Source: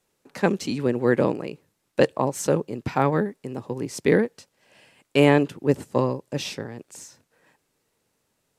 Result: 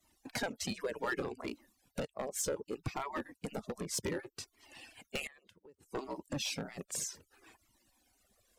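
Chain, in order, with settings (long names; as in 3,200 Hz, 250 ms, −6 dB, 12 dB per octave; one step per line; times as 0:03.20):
harmonic-percussive split with one part muted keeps percussive
parametric band 980 Hz −4 dB 2.8 octaves
downward compressor 20 to 1, threshold −37 dBFS, peak gain reduction 23.5 dB
0:05.26–0:05.86: gate with flip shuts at −36 dBFS, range −26 dB
hard clipping −35.5 dBFS, distortion −11 dB
flanger whose copies keep moving one way falling 0.65 Hz
level +11 dB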